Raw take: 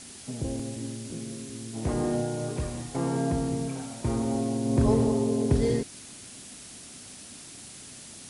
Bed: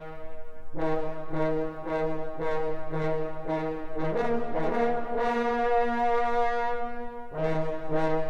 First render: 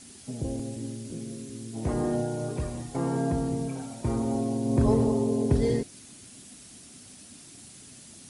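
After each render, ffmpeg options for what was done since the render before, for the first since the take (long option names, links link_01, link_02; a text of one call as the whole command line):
ffmpeg -i in.wav -af "afftdn=noise_reduction=6:noise_floor=-46" out.wav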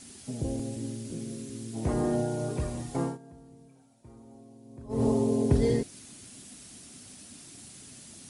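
ffmpeg -i in.wav -filter_complex "[0:a]asplit=3[link_01][link_02][link_03];[link_01]atrim=end=3.18,asetpts=PTS-STARTPTS,afade=type=out:start_time=3.01:duration=0.17:silence=0.0668344[link_04];[link_02]atrim=start=3.18:end=4.89,asetpts=PTS-STARTPTS,volume=-23.5dB[link_05];[link_03]atrim=start=4.89,asetpts=PTS-STARTPTS,afade=type=in:duration=0.17:silence=0.0668344[link_06];[link_04][link_05][link_06]concat=n=3:v=0:a=1" out.wav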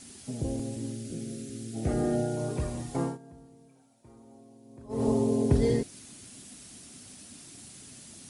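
ffmpeg -i in.wav -filter_complex "[0:a]asettb=1/sr,asplit=3[link_01][link_02][link_03];[link_01]atrim=end=0.924[link_04];[link_02]atrim=start=0.92:end=2.37,asetpts=PTS-STARTPTS,afade=type=in:duration=0.004:curve=qsin,afade=type=out:start_time=1.446:duration=0.004:curve=qsin,asuperstop=centerf=1000:order=4:qfactor=3[link_05];[link_03]atrim=start=2.366[link_06];[link_04][link_05]acrossfade=duration=0.004:curve1=hsin:curve2=qsin[link_07];[link_07][link_06]acrossfade=duration=0.004:curve1=qsin:curve2=hsin,asettb=1/sr,asplit=3[link_08][link_09][link_10];[link_08]atrim=end=3.464[link_11];[link_09]atrim=start=3.46:end=5.08,asetpts=PTS-STARTPTS,afade=type=in:duration=0.004:curve=qsin,afade=type=out:start_time=1.616:duration=0.004:curve=qsin,lowshelf=frequency=170:gain=-7[link_12];[link_10]atrim=start=5.076[link_13];[link_11][link_12]acrossfade=duration=0.004:curve1=hsin:curve2=qsin[link_14];[link_14][link_13]acrossfade=duration=0.004:curve1=qsin:curve2=hsin" out.wav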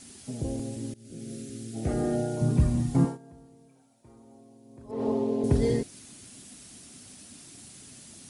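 ffmpeg -i in.wav -filter_complex "[0:a]asettb=1/sr,asplit=3[link_01][link_02][link_03];[link_01]atrim=end=2.414[link_04];[link_02]atrim=start=2.41:end=3.05,asetpts=PTS-STARTPTS,afade=type=in:duration=0.004:curve=qsin,afade=type=out:start_time=0.636:duration=0.004:curve=qsin,lowshelf=frequency=310:width_type=q:width=1.5:gain=9.5[link_05];[link_03]atrim=start=3.046[link_06];[link_04][link_05]acrossfade=duration=0.004:curve1=hsin:curve2=qsin[link_07];[link_07][link_06]acrossfade=duration=0.004:curve1=qsin:curve2=hsin,asettb=1/sr,asplit=3[link_08][link_09][link_10];[link_08]atrim=end=4.914[link_11];[link_09]atrim=start=4.91:end=5.44,asetpts=PTS-STARTPTS,afade=type=in:duration=0.004:curve=qsin,afade=type=out:start_time=0.526:duration=0.004:curve=qsin,acrossover=split=200 4300:gain=0.251 1 0.126[link_12][link_13][link_14];[link_12][link_13][link_14]amix=inputs=3:normalize=0[link_15];[link_10]atrim=start=5.436[link_16];[link_11][link_15]acrossfade=duration=0.004:curve1=hsin:curve2=qsin[link_17];[link_17][link_16]acrossfade=duration=0.004:curve1=qsin:curve2=hsin,asplit=2[link_18][link_19];[link_18]atrim=end=0.94,asetpts=PTS-STARTPTS,afade=type=out:start_time=0.936:duration=0.004:curve=hsin:silence=0.0749894[link_20];[link_19]atrim=start=0.94,asetpts=PTS-STARTPTS,afade=type=in:duration=0.41:silence=0.0749894[link_21];[link_20][link_21]concat=n=2:v=0:a=1" out.wav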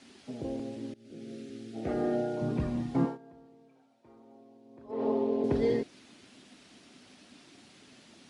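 ffmpeg -i in.wav -filter_complex "[0:a]acrossover=split=220 4500:gain=0.2 1 0.0631[link_01][link_02][link_03];[link_01][link_02][link_03]amix=inputs=3:normalize=0" out.wav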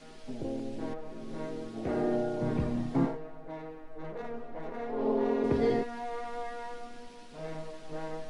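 ffmpeg -i in.wav -i bed.wav -filter_complex "[1:a]volume=-12.5dB[link_01];[0:a][link_01]amix=inputs=2:normalize=0" out.wav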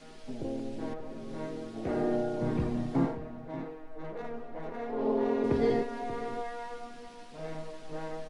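ffmpeg -i in.wav -filter_complex "[0:a]asplit=2[link_01][link_02];[link_02]adelay=583.1,volume=-13dB,highshelf=frequency=4000:gain=-13.1[link_03];[link_01][link_03]amix=inputs=2:normalize=0" out.wav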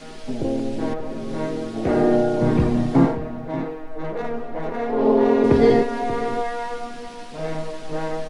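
ffmpeg -i in.wav -af "volume=12dB" out.wav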